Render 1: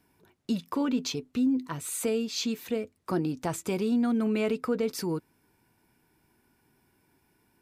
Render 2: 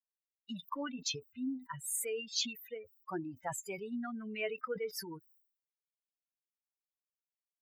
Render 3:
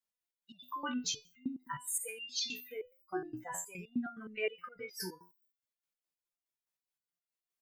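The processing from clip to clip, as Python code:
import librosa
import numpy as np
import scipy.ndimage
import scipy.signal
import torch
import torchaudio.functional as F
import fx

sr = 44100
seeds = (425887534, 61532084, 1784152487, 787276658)

y1 = fx.bin_expand(x, sr, power=3.0)
y1 = fx.highpass(y1, sr, hz=1000.0, slope=6)
y1 = fx.sustainer(y1, sr, db_per_s=110.0)
y1 = y1 * librosa.db_to_amplitude(2.5)
y2 = fx.resonator_held(y1, sr, hz=9.6, low_hz=62.0, high_hz=700.0)
y2 = y2 * librosa.db_to_amplitude(11.0)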